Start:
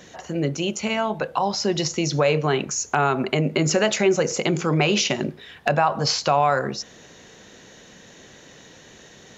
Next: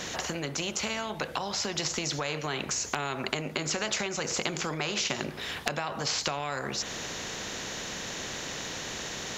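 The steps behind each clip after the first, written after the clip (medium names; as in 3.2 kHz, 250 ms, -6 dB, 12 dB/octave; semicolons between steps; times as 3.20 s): compression 4:1, threshold -30 dBFS, peak gain reduction 13.5 dB; spectrum-flattening compressor 2:1; trim +5.5 dB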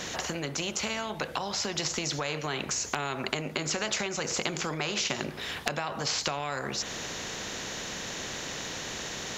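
no audible change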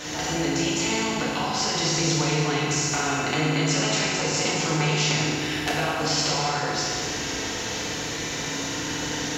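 FDN reverb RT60 2.4 s, low-frequency decay 1.35×, high-frequency decay 0.85×, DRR -8.5 dB; trim -2 dB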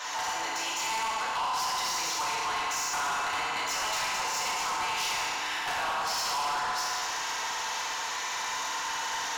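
resonant high-pass 970 Hz, resonance Q 3.9; saturation -24.5 dBFS, distortion -9 dB; trim -2.5 dB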